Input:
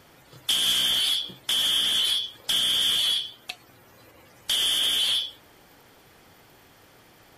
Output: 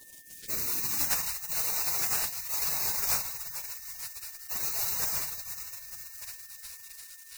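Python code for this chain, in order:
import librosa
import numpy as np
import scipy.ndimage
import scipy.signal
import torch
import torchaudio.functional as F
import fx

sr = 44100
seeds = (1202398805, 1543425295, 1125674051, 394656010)

p1 = fx.halfwave_hold(x, sr)
p2 = fx.dynamic_eq(p1, sr, hz=870.0, q=4.6, threshold_db=-54.0, ratio=4.0, max_db=-4)
p3 = 10.0 ** (-19.5 / 20.0) * np.tanh(p2 / 10.0 ** (-19.5 / 20.0))
p4 = p2 + (p3 * librosa.db_to_amplitude(-9.0))
p5 = fx.notch(p4, sr, hz=6200.0, q=15.0)
p6 = p5 + fx.echo_diffused(p5, sr, ms=460, feedback_pct=53, wet_db=-14.0, dry=0)
p7 = fx.filter_sweep_highpass(p6, sr, from_hz=1600.0, to_hz=250.0, start_s=0.02, end_s=1.4, q=6.9)
p8 = fx.leveller(p7, sr, passes=3)
p9 = fx.high_shelf(p8, sr, hz=12000.0, db=-4.0)
p10 = fx.spec_gate(p9, sr, threshold_db=-30, keep='weak')
y = p10 + 10.0 ** (-58.0 / 20.0) * np.sin(2.0 * np.pi * 1800.0 * np.arange(len(p10)) / sr)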